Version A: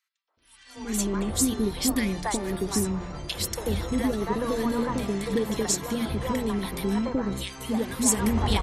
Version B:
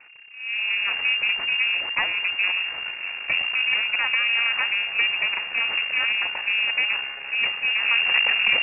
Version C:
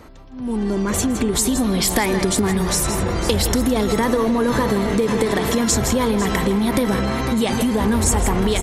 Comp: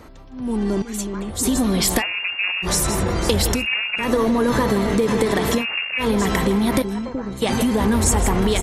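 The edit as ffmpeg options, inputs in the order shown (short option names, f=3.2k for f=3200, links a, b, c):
-filter_complex "[0:a]asplit=2[a][b];[1:a]asplit=3[c][d][e];[2:a]asplit=6[f][g][h][i][j][k];[f]atrim=end=0.822[l];[a]atrim=start=0.818:end=1.432[m];[g]atrim=start=1.428:end=2.03[n];[c]atrim=start=1.97:end=2.68[o];[h]atrim=start=2.62:end=3.67[p];[d]atrim=start=3.51:end=4.12[q];[i]atrim=start=3.96:end=5.66[r];[e]atrim=start=5.56:end=6.07[s];[j]atrim=start=5.97:end=6.822[t];[b]atrim=start=6.818:end=7.422[u];[k]atrim=start=7.418[v];[l][m]acrossfade=d=0.004:c1=hsin:c2=hsin[w];[w][n]acrossfade=d=0.004:c1=hsin:c2=hsin[x];[x][o]acrossfade=d=0.06:c1=tri:c2=tri[y];[y][p]acrossfade=d=0.06:c1=tri:c2=tri[z];[z][q]acrossfade=d=0.16:c1=tri:c2=tri[aa];[aa][r]acrossfade=d=0.16:c1=tri:c2=tri[ab];[ab][s]acrossfade=d=0.1:c1=tri:c2=tri[ac];[ac][t]acrossfade=d=0.1:c1=tri:c2=tri[ad];[ad][u]acrossfade=d=0.004:c1=hsin:c2=hsin[ae];[ae][v]acrossfade=d=0.004:c1=hsin:c2=hsin"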